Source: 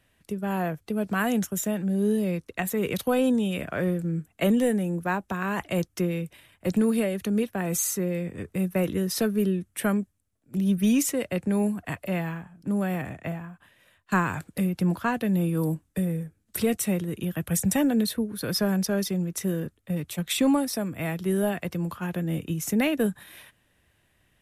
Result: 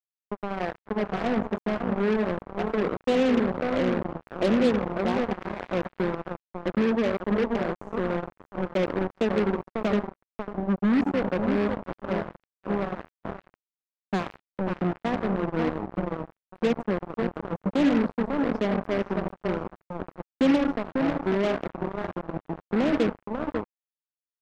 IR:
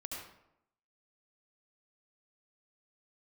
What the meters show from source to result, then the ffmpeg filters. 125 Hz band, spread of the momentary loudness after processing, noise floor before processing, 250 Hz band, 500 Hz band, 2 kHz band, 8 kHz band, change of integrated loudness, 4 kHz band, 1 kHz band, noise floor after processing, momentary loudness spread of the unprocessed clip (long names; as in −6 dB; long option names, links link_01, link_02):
−5.0 dB, 13 LU, −69 dBFS, −1.0 dB, +2.5 dB, −1.0 dB, below −20 dB, −0.5 dB, −4.0 dB, +2.0 dB, below −85 dBFS, 9 LU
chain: -filter_complex "[0:a]asuperpass=centerf=410:order=4:qfactor=0.77,aecho=1:1:545|1090|1635:0.501|0.1|0.02,asplit=2[link_01][link_02];[1:a]atrim=start_sample=2205,afade=type=out:start_time=0.42:duration=0.01,atrim=end_sample=18963[link_03];[link_02][link_03]afir=irnorm=-1:irlink=0,volume=-3dB[link_04];[link_01][link_04]amix=inputs=2:normalize=0,acrusher=bits=3:mix=0:aa=0.5,volume=-1.5dB"